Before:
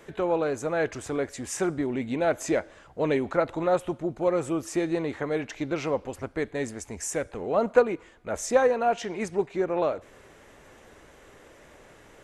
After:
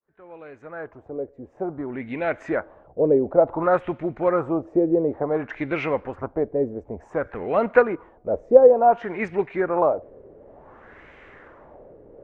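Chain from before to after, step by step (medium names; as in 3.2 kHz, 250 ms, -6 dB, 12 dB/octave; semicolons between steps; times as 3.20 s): fade-in on the opening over 3.58 s; LFO low-pass sine 0.56 Hz 480–2300 Hz; trim +2.5 dB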